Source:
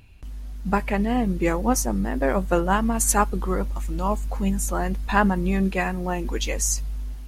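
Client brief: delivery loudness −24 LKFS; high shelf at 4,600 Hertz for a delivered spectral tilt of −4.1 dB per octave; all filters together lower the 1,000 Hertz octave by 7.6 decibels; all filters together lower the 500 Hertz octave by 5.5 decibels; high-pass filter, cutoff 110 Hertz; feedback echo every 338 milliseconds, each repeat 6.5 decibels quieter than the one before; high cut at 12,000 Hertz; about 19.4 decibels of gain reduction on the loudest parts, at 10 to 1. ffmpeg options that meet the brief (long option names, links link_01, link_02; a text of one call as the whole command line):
ffmpeg -i in.wav -af "highpass=110,lowpass=12000,equalizer=frequency=500:width_type=o:gain=-5,equalizer=frequency=1000:width_type=o:gain=-8.5,highshelf=frequency=4600:gain=5.5,acompressor=threshold=-33dB:ratio=10,aecho=1:1:338|676|1014|1352|1690|2028:0.473|0.222|0.105|0.0491|0.0231|0.0109,volume=12dB" out.wav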